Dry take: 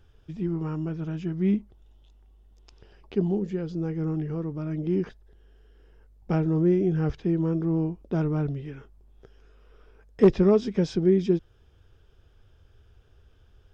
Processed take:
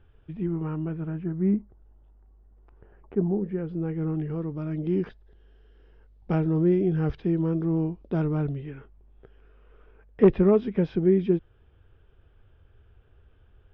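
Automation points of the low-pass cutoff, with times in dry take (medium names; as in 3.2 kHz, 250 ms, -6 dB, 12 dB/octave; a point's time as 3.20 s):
low-pass 24 dB/octave
0.83 s 2.9 kHz
1.30 s 1.7 kHz
3.30 s 1.7 kHz
3.84 s 2.9 kHz
4.56 s 4.3 kHz
8.36 s 4.3 kHz
8.76 s 2.9 kHz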